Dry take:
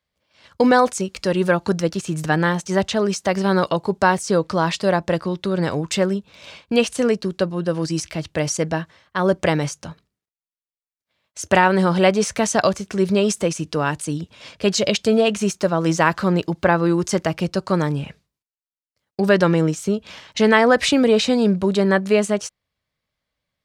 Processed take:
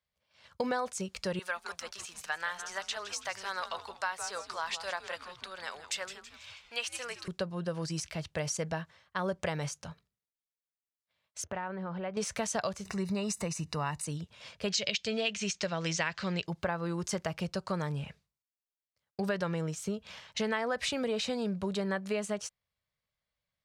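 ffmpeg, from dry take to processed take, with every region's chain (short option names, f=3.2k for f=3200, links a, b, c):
-filter_complex "[0:a]asettb=1/sr,asplit=3[a][b][c];[a]atrim=end=1.394[d];[b]atrim=start=1.39:end=7.28,asetpts=PTS-STARTPTS,afade=t=in:d=0.004:c=qsin,afade=t=out:st=5.886:d=0.004:c=qsin,highpass=1.1k,asplit=6[e][f][g][h][i][j];[f]adelay=163,afreqshift=-150,volume=-12dB[k];[g]adelay=326,afreqshift=-300,volume=-18.7dB[l];[h]adelay=489,afreqshift=-450,volume=-25.5dB[m];[i]adelay=652,afreqshift=-600,volume=-32.2dB[n];[j]adelay=815,afreqshift=-750,volume=-39dB[o];[e][k][l][m][n][o]amix=inputs=6:normalize=0,atrim=end_sample=259749[p];[c]atrim=start=7.276[q];[d][p]acrossfade=d=0.004:c1=hsin:c2=qsin[r];[r][q]acrossfade=d=0.004:c1=qsin:c2=hsin,asettb=1/sr,asplit=3[s][t][u];[s]atrim=end=11.444[v];[t]atrim=start=11.44:end=12.17,asetpts=PTS-STARTPTS,afade=t=in:d=0.004:c=qsin,afade=t=out:st=0.726:d=0.004:c=qsin,lowpass=1.9k,acompressor=threshold=-27dB:ratio=3:attack=3.2:release=140:knee=1:detection=peak[w];[u]atrim=start=12.166[x];[v][w]acrossfade=d=0.004:c1=hsin:c2=qsin[y];[y][x]acrossfade=d=0.004:c1=qsin:c2=hsin,asettb=1/sr,asplit=3[z][aa][ab];[z]atrim=end=12.854[ac];[aa]atrim=start=12.85:end=14.07,asetpts=PTS-STARTPTS,afade=t=in:d=0.004:c=qsin,afade=t=out:st=1.216:d=0.004:c=qsin,aecho=1:1:1:0.42,atrim=end_sample=53802,acompressor=mode=upward:threshold=-24dB:ratio=2.5:attack=3.2:release=140:knee=2.83:detection=peak,asuperstop=centerf=3200:order=8:qfactor=6.3[ad];[ab]atrim=start=14.066[ae];[ac][ad]acrossfade=d=0.004:c1=hsin:c2=qsin[af];[af][ae]acrossfade=d=0.004:c1=qsin:c2=hsin,asettb=1/sr,asplit=3[ag][ah][ai];[ag]atrim=end=14.704[aj];[ah]atrim=start=14.7:end=16.46,asetpts=PTS-STARTPTS,afade=t=in:d=0.004:c=qsin,afade=t=out:st=1.756:d=0.004:c=qsin,lowpass=f=6.9k:w=0.5412,lowpass=f=6.9k:w=1.3066,highshelf=f=1.6k:t=q:w=1.5:g=8[ak];[ai]atrim=start=16.456[al];[aj][ak]acrossfade=d=0.004:c1=hsin:c2=qsin[am];[am][al]acrossfade=d=0.004:c1=qsin:c2=hsin,equalizer=f=300:t=o:w=0.7:g=-10,acompressor=threshold=-21dB:ratio=4,volume=-8.5dB"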